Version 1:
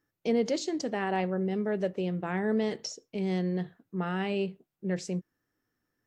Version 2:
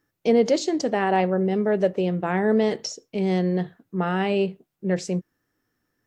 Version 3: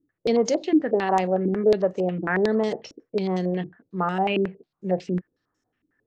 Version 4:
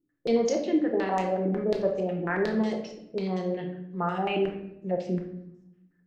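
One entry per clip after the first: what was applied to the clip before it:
dynamic equaliser 640 Hz, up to +4 dB, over −38 dBFS, Q 0.85; level +6 dB
low-pass on a step sequencer 11 Hz 300–6,700 Hz; level −3.5 dB
rectangular room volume 220 cubic metres, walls mixed, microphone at 0.87 metres; level −6.5 dB

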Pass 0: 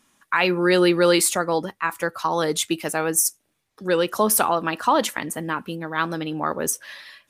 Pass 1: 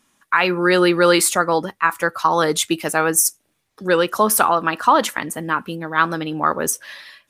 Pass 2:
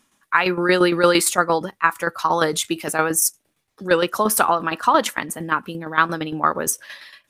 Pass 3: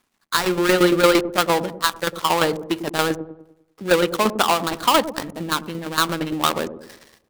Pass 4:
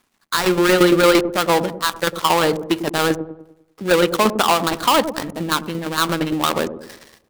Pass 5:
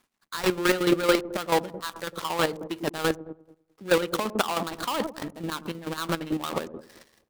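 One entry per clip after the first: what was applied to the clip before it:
dynamic equaliser 1,300 Hz, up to +6 dB, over −33 dBFS, Q 1.4; automatic gain control gain up to 5 dB
shaped tremolo saw down 8.7 Hz, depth 65%; level +1.5 dB
gap after every zero crossing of 0.2 ms; delay with a low-pass on its return 100 ms, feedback 44%, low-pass 540 Hz, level −8 dB; level +1 dB
brickwall limiter −7 dBFS, peak gain reduction 6 dB; level +4 dB
square-wave tremolo 4.6 Hz, depth 65%, duty 30%; level −5 dB

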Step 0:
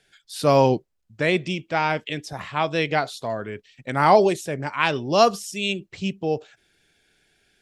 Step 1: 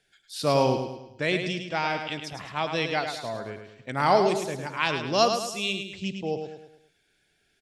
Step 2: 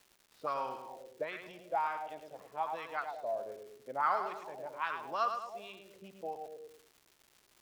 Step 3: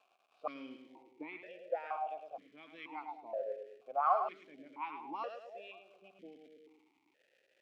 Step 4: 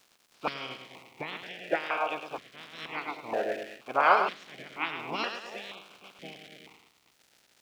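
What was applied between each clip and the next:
dynamic equaliser 4,700 Hz, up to +6 dB, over −41 dBFS, Q 0.94; on a send: repeating echo 106 ms, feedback 44%, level −7 dB; on the sum: level −6 dB
envelope filter 360–1,300 Hz, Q 4.5, up, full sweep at −21.5 dBFS; surface crackle 420 per second −50 dBFS
formant filter that steps through the vowels 2.1 Hz; level +9 dB
ceiling on every frequency bin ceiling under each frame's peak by 28 dB; level +9 dB

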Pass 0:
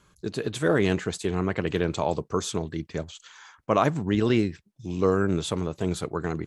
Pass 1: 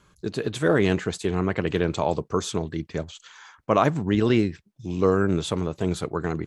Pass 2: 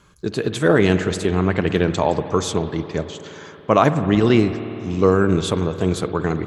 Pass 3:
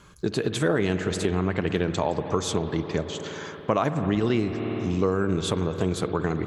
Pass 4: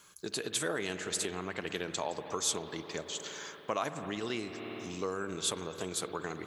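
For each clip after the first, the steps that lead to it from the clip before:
high-shelf EQ 6,800 Hz −4.5 dB; level +2 dB
spring reverb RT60 3.5 s, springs 54 ms, chirp 55 ms, DRR 10.5 dB; level +5 dB
downward compressor 3 to 1, threshold −25 dBFS, peak gain reduction 12 dB; level +2 dB
RIAA equalisation recording; level −8.5 dB

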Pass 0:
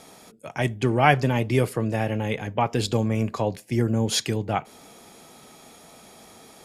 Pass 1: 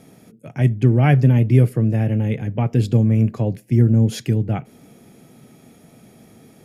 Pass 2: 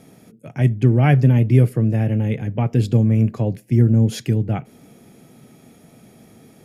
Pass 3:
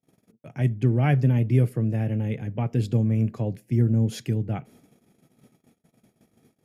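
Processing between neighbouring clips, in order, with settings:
octave-band graphic EQ 125/250/1,000/4,000/8,000 Hz +11/+5/−10/−8/−7 dB
no processing that can be heard
noise gate −45 dBFS, range −35 dB; level −6.5 dB

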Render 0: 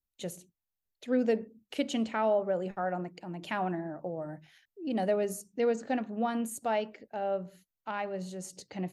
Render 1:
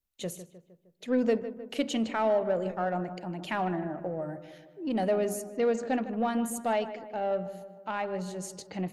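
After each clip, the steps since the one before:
in parallel at −7 dB: soft clipping −32.5 dBFS, distortion −7 dB
on the sum: feedback echo with a low-pass in the loop 154 ms, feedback 56%, low-pass 2,100 Hz, level −12 dB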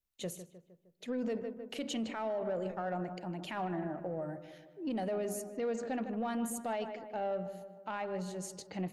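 brickwall limiter −25 dBFS, peak gain reduction 9 dB
level −3.5 dB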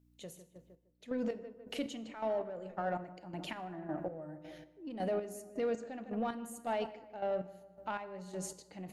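hum with harmonics 60 Hz, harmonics 5, −70 dBFS −3 dB per octave
square-wave tremolo 1.8 Hz, depth 65%, duty 35%
feedback delay network reverb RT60 0.69 s, high-frequency decay 0.9×, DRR 13 dB
level +1 dB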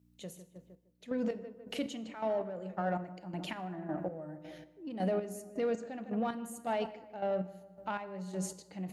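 high-pass filter 55 Hz
parametric band 190 Hz +6.5 dB 0.21 octaves
level +1.5 dB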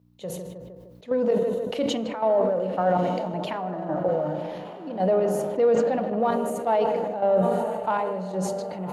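octave-band graphic EQ 125/500/1,000/4,000/8,000 Hz +9/+11/+10/+4/−4 dB
feedback delay with all-pass diffusion 1,186 ms, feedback 44%, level −13.5 dB
level that may fall only so fast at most 27 dB per second

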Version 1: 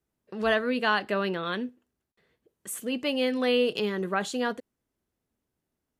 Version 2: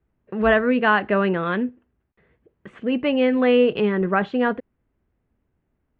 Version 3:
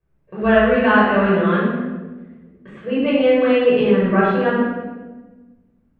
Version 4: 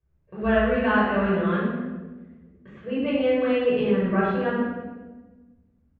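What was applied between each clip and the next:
low-pass filter 2,500 Hz 24 dB per octave; low-shelf EQ 110 Hz +12 dB; level +7 dB
rectangular room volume 820 cubic metres, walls mixed, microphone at 5.5 metres; level −7.5 dB
parametric band 76 Hz +12 dB 1.1 octaves; downsampling to 16,000 Hz; level −7.5 dB

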